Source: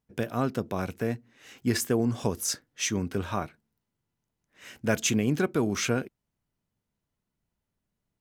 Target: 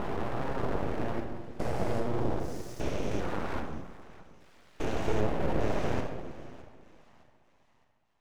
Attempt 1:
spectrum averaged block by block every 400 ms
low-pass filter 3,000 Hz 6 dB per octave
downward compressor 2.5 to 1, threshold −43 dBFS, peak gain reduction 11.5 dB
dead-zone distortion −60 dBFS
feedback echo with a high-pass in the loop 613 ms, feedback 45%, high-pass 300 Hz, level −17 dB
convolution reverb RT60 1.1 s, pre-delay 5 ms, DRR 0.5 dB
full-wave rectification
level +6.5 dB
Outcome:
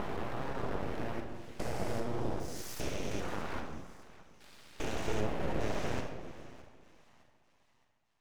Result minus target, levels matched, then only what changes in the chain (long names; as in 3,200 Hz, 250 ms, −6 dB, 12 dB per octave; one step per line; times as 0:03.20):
4,000 Hz band +5.0 dB; downward compressor: peak gain reduction +5 dB
change: low-pass filter 1,100 Hz 6 dB per octave
change: downward compressor 2.5 to 1, threshold −35 dBFS, peak gain reduction 7 dB